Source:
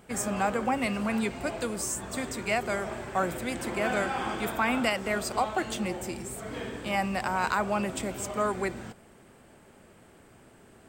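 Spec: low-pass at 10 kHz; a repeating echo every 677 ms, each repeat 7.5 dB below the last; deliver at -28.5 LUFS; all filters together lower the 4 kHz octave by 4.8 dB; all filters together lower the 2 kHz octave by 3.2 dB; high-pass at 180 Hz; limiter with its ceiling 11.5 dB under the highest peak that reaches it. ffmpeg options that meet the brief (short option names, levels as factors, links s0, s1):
-af "highpass=180,lowpass=10000,equalizer=f=2000:t=o:g=-3,equalizer=f=4000:t=o:g=-5.5,alimiter=level_in=1.33:limit=0.0631:level=0:latency=1,volume=0.75,aecho=1:1:677|1354|2031|2708|3385:0.422|0.177|0.0744|0.0312|0.0131,volume=2.24"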